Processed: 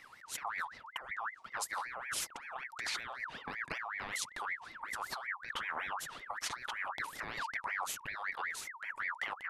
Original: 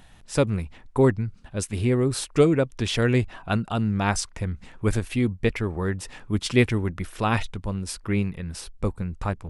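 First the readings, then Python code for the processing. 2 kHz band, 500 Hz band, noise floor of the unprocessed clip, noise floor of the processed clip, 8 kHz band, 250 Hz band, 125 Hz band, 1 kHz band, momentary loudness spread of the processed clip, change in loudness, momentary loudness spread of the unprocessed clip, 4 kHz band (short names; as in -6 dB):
-4.0 dB, -27.5 dB, -50 dBFS, -57 dBFS, -8.0 dB, -34.5 dB, -37.5 dB, -7.0 dB, 5 LU, -14.0 dB, 10 LU, -9.0 dB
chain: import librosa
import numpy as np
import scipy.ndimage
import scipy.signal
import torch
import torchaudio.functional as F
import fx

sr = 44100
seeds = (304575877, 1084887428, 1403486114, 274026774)

y = fx.over_compress(x, sr, threshold_db=-29.0, ratio=-1.0)
y = fx.ring_lfo(y, sr, carrier_hz=1500.0, swing_pct=40, hz=5.3)
y = F.gain(torch.from_numpy(y), -8.5).numpy()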